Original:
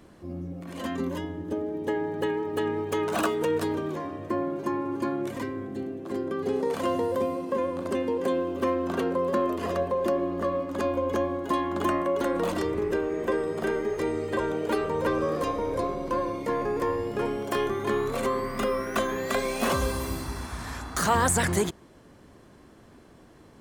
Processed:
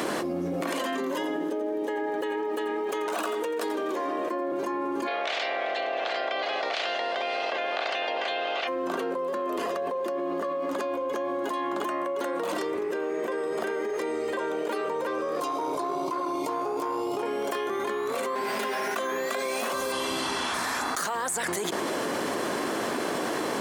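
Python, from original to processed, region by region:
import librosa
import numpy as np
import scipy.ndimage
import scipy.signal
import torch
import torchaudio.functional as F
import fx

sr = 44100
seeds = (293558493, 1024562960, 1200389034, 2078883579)

y = fx.chain(x, sr, fx.highpass(hz=210.0, slope=24),
    fx.echo_single(ms=87, db=-12.0), at=(0.61, 4.52))
y = fx.spec_clip(y, sr, under_db=29, at=(5.06, 8.67), fade=0.02)
y = fx.cabinet(y, sr, low_hz=450.0, low_slope=12, high_hz=4200.0, hz=(680.0, 980.0, 1700.0), db=(8, -9, -4), at=(5.06, 8.67), fade=0.02)
y = fx.notch(y, sr, hz=1300.0, q=14.0, at=(5.06, 8.67), fade=0.02)
y = fx.chain(y, sr, fx.fixed_phaser(hz=340.0, stages=8),
    fx.transformer_sat(knee_hz=400.0), at=(15.4, 17.23))
y = fx.chain(y, sr, fx.lower_of_two(delay_ms=4.9),
    fx.clip_hard(threshold_db=-24.5),
    fx.notch(hz=1200.0, q=5.8), at=(18.35, 18.96))
y = fx.chain(y, sr, fx.lowpass(hz=8200.0, slope=12),
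    fx.peak_eq(hz=3100.0, db=13.5, octaves=0.27), at=(19.92, 20.54))
y = scipy.signal.sosfilt(scipy.signal.butter(2, 380.0, 'highpass', fs=sr, output='sos'), y)
y = fx.env_flatten(y, sr, amount_pct=100)
y = y * 10.0 ** (-9.0 / 20.0)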